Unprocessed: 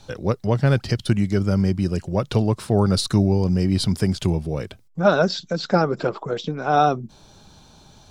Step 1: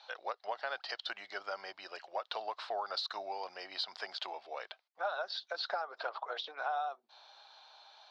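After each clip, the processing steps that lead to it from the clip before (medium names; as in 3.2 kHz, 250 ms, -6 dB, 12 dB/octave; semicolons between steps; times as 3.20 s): elliptic band-pass 700–4300 Hz, stop band 60 dB; dynamic bell 2.3 kHz, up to -6 dB, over -48 dBFS, Q 2.7; compression 10:1, threshold -30 dBFS, peak gain reduction 16 dB; trim -3 dB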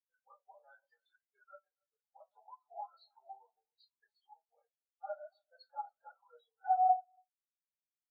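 on a send: delay 281 ms -10 dB; on the sum: simulated room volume 800 m³, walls furnished, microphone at 4.1 m; spectral contrast expander 4:1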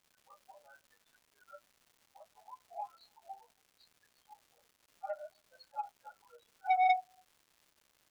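crackle 400 per s -57 dBFS; transformer saturation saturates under 1.3 kHz; trim +2.5 dB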